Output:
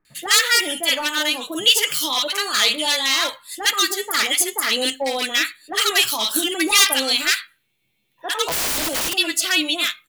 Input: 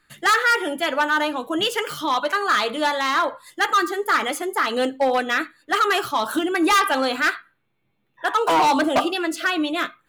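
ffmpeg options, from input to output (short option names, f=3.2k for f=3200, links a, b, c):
-filter_complex "[0:a]acrossover=split=1100[a][b];[b]adelay=50[c];[a][c]amix=inputs=2:normalize=0,aexciter=amount=4.7:drive=6.1:freq=2.1k,asplit=3[d][e][f];[d]afade=t=out:st=8.45:d=0.02[g];[e]aeval=exprs='(mod(5.01*val(0)+1,2)-1)/5.01':c=same,afade=t=in:st=8.45:d=0.02,afade=t=out:st=9.13:d=0.02[h];[f]afade=t=in:st=9.13:d=0.02[i];[g][h][i]amix=inputs=3:normalize=0,volume=-3.5dB"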